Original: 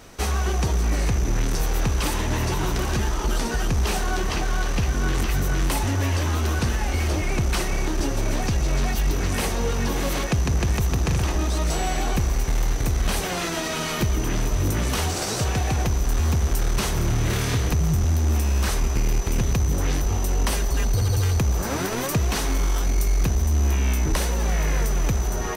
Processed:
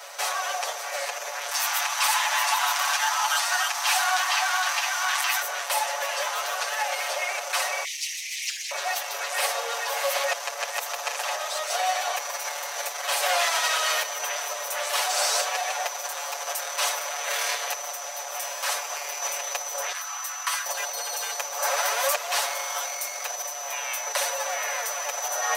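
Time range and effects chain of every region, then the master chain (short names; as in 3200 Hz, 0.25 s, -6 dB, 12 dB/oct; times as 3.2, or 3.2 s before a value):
1.51–5.42 steep high-pass 760 Hz + companded quantiser 8-bit
7.84–8.71 brick-wall FIR band-stop 180–1900 Hz + Doppler distortion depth 0.5 ms
19.92–20.66 ladder high-pass 1000 Hz, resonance 45% + doubler 13 ms -12 dB
whole clip: limiter -21 dBFS; steep high-pass 520 Hz 72 dB/oct; comb 7 ms, depth 96%; gain +5.5 dB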